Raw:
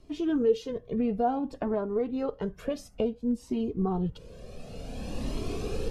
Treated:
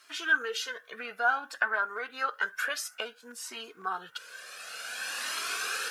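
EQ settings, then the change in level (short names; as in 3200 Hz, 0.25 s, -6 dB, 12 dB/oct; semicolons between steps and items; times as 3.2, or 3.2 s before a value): resonant high-pass 1500 Hz, resonance Q 8.5; high shelf 5700 Hz +11 dB; +6.5 dB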